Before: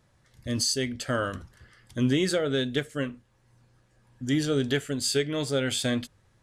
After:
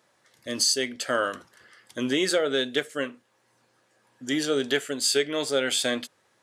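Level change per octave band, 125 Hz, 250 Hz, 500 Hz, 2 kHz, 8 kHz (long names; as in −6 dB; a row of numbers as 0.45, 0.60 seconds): −13.5, −2.5, +2.5, +4.0, +4.0 decibels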